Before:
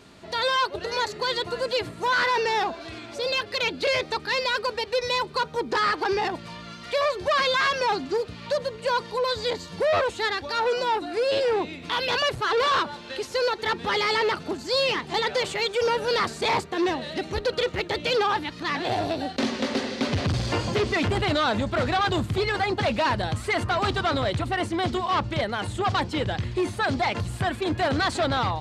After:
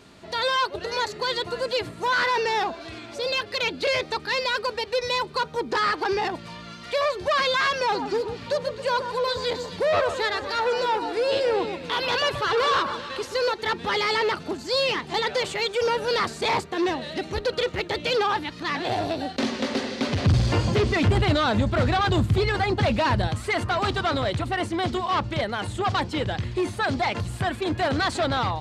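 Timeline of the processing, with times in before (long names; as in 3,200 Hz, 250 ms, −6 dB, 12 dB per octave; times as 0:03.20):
0:07.81–0:13.52: delay that swaps between a low-pass and a high-pass 131 ms, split 1,500 Hz, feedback 61%, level −8 dB
0:20.23–0:23.28: low-shelf EQ 180 Hz +9.5 dB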